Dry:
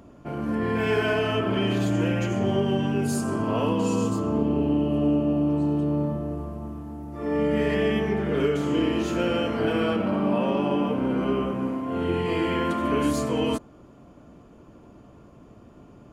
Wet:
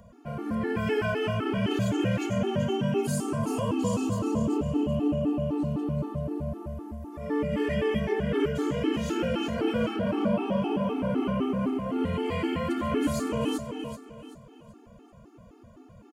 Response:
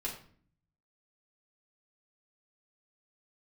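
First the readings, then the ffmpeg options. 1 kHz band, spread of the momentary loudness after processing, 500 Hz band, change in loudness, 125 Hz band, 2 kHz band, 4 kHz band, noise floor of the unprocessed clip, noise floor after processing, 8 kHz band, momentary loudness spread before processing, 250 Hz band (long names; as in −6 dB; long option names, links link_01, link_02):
−4.0 dB, 8 LU, −3.5 dB, −3.5 dB, −2.5 dB, −4.0 dB, −4.0 dB, −50 dBFS, −53 dBFS, −1.5 dB, 5 LU, −3.5 dB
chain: -filter_complex "[0:a]highshelf=frequency=9000:gain=5,acrossover=split=450[link_01][link_02];[link_02]acompressor=threshold=-28dB:ratio=3[link_03];[link_01][link_03]amix=inputs=2:normalize=0,aecho=1:1:383|766|1149|1532:0.398|0.139|0.0488|0.0171,afftfilt=real='re*gt(sin(2*PI*3.9*pts/sr)*(1-2*mod(floor(b*sr/1024/230),2)),0)':imag='im*gt(sin(2*PI*3.9*pts/sr)*(1-2*mod(floor(b*sr/1024/230),2)),0)':win_size=1024:overlap=0.75"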